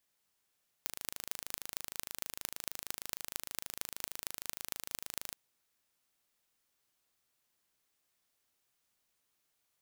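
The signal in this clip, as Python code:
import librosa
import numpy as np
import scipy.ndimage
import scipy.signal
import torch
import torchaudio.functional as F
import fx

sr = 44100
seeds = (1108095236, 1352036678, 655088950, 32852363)

y = fx.impulse_train(sr, length_s=4.48, per_s=26.4, accent_every=6, level_db=-7.5)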